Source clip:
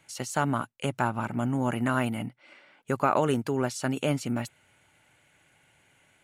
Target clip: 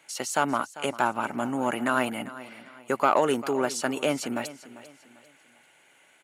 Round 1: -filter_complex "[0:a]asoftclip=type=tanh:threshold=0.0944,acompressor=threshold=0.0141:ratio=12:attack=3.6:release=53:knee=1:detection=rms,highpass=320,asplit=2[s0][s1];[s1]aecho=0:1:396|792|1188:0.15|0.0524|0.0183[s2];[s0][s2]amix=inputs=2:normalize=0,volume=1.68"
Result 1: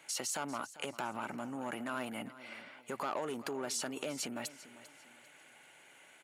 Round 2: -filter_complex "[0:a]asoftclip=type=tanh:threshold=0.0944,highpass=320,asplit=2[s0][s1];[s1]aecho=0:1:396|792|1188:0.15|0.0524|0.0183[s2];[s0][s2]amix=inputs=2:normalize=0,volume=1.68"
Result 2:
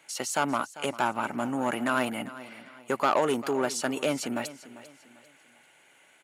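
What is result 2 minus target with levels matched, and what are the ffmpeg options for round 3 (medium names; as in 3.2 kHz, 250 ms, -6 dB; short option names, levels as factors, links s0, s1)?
saturation: distortion +8 dB
-filter_complex "[0:a]asoftclip=type=tanh:threshold=0.2,highpass=320,asplit=2[s0][s1];[s1]aecho=0:1:396|792|1188:0.15|0.0524|0.0183[s2];[s0][s2]amix=inputs=2:normalize=0,volume=1.68"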